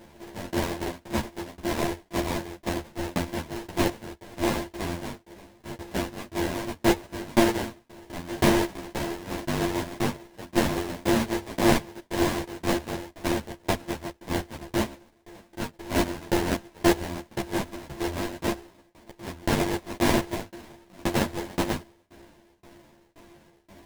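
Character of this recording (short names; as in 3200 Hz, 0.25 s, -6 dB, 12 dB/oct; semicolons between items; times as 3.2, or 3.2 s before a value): a buzz of ramps at a fixed pitch in blocks of 128 samples; tremolo saw down 1.9 Hz, depth 100%; aliases and images of a low sample rate 1300 Hz, jitter 20%; a shimmering, thickened sound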